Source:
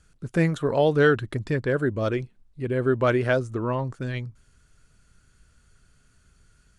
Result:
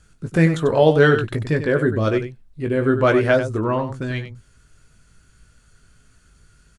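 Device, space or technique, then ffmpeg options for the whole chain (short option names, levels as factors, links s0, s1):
slapback doubling: -filter_complex "[0:a]asplit=3[s0][s1][s2];[s1]adelay=19,volume=0.473[s3];[s2]adelay=95,volume=0.316[s4];[s0][s3][s4]amix=inputs=3:normalize=0,volume=1.68"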